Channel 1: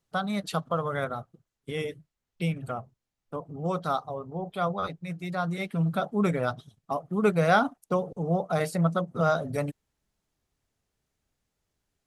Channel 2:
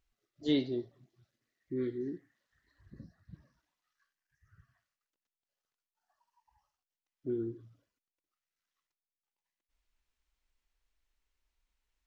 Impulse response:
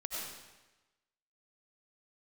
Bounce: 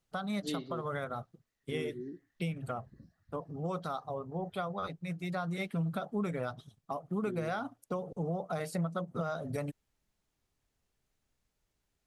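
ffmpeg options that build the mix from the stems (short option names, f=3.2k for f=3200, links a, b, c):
-filter_complex "[0:a]acompressor=threshold=-28dB:ratio=4,volume=-2.5dB[a];[1:a]volume=-5dB[b];[a][b]amix=inputs=2:normalize=0,alimiter=level_in=1dB:limit=-24dB:level=0:latency=1:release=178,volume=-1dB"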